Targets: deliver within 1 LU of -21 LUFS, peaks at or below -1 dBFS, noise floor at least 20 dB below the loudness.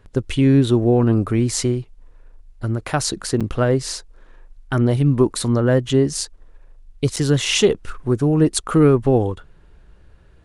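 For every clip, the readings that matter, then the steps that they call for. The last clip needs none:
dropouts 2; longest dropout 6.7 ms; loudness -18.5 LUFS; peak level -3.0 dBFS; loudness target -21.0 LUFS
-> interpolate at 3.40/7.16 s, 6.7 ms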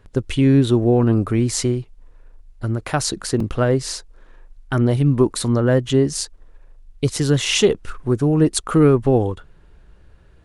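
dropouts 0; loudness -18.5 LUFS; peak level -3.0 dBFS; loudness target -21.0 LUFS
-> trim -2.5 dB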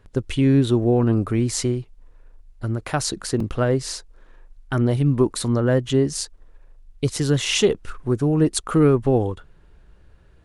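loudness -21.0 LUFS; peak level -5.5 dBFS; noise floor -52 dBFS

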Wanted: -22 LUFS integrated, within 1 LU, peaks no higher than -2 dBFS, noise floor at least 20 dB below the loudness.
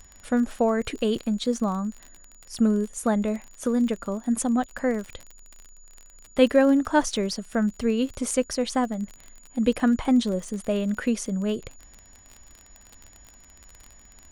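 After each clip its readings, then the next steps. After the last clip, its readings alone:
tick rate 37 per s; steady tone 6.9 kHz; tone level -52 dBFS; loudness -25.0 LUFS; peak level -5.5 dBFS; loudness target -22.0 LUFS
-> de-click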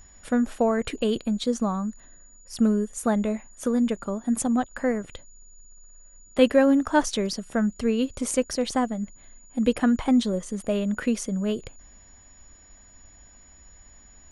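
tick rate 0 per s; steady tone 6.9 kHz; tone level -52 dBFS
-> band-stop 6.9 kHz, Q 30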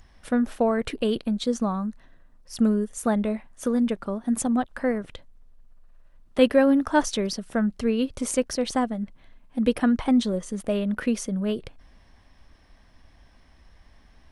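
steady tone not found; loudness -25.0 LUFS; peak level -5.5 dBFS; loudness target -22.0 LUFS
-> trim +3 dB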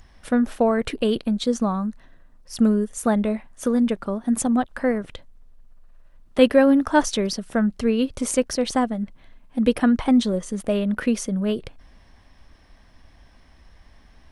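loudness -22.0 LUFS; peak level -2.5 dBFS; noise floor -53 dBFS

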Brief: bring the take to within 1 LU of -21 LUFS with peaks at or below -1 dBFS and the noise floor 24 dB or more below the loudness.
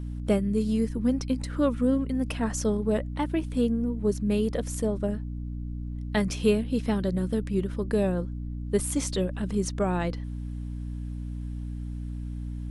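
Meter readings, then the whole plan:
hum 60 Hz; highest harmonic 300 Hz; hum level -31 dBFS; loudness -28.5 LUFS; peak level -11.0 dBFS; loudness target -21.0 LUFS
-> de-hum 60 Hz, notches 5; trim +7.5 dB

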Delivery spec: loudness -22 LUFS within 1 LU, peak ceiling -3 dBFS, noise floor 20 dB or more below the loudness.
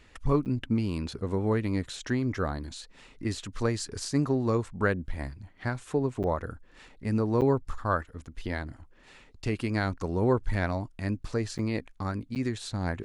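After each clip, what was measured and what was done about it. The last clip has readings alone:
dropouts 5; longest dropout 8.9 ms; loudness -30.5 LUFS; peak level -12.5 dBFS; loudness target -22.0 LUFS
-> interpolate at 0.45/6.23/7.41/11.58/12.35 s, 8.9 ms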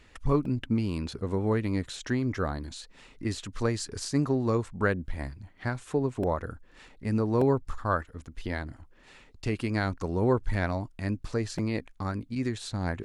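dropouts 0; loudness -30.5 LUFS; peak level -12.5 dBFS; loudness target -22.0 LUFS
-> trim +8.5 dB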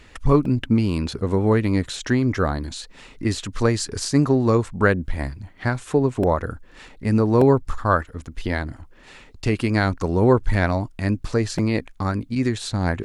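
loudness -22.0 LUFS; peak level -4.0 dBFS; noise floor -48 dBFS

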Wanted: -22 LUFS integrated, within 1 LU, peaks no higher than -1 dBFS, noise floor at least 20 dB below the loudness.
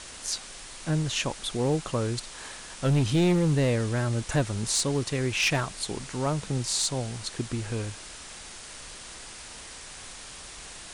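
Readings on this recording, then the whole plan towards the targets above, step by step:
clipped samples 0.9%; clipping level -18.0 dBFS; noise floor -44 dBFS; noise floor target -48 dBFS; loudness -27.5 LUFS; peak level -18.0 dBFS; loudness target -22.0 LUFS
-> clip repair -18 dBFS; noise print and reduce 6 dB; trim +5.5 dB

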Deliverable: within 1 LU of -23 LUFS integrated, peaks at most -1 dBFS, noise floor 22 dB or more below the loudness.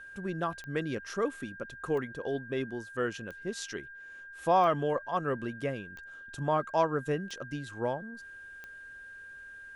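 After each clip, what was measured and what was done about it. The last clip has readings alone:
clicks found 7; steady tone 1.6 kHz; tone level -45 dBFS; loudness -33.0 LUFS; peak level -14.5 dBFS; loudness target -23.0 LUFS
-> de-click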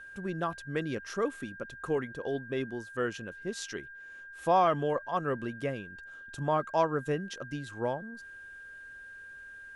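clicks found 0; steady tone 1.6 kHz; tone level -45 dBFS
-> band-stop 1.6 kHz, Q 30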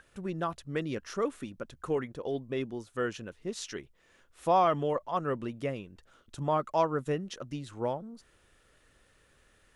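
steady tone not found; loudness -33.0 LUFS; peak level -14.5 dBFS; loudness target -23.0 LUFS
-> trim +10 dB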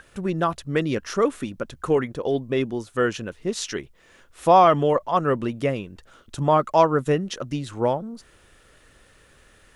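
loudness -23.0 LUFS; peak level -4.5 dBFS; noise floor -56 dBFS

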